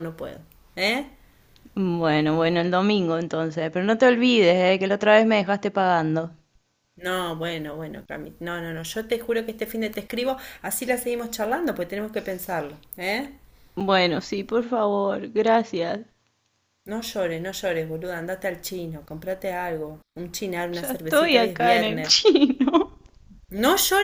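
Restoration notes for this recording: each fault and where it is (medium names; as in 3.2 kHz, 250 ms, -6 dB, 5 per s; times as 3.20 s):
13.80–13.81 s: dropout 6.3 ms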